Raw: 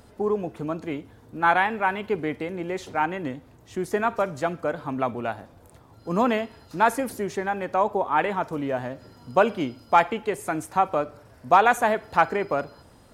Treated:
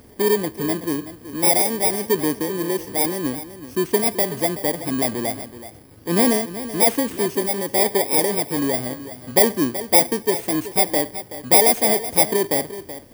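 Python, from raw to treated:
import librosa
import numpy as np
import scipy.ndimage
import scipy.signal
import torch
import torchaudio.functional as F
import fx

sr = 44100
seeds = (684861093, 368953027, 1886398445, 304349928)

y = fx.bit_reversed(x, sr, seeds[0], block=32)
y = fx.peak_eq(y, sr, hz=340.0, db=6.5, octaves=1.3)
y = y + 10.0 ** (-13.5 / 20.0) * np.pad(y, (int(377 * sr / 1000.0), 0))[:len(y)]
y = F.gain(torch.from_numpy(y), 2.5).numpy()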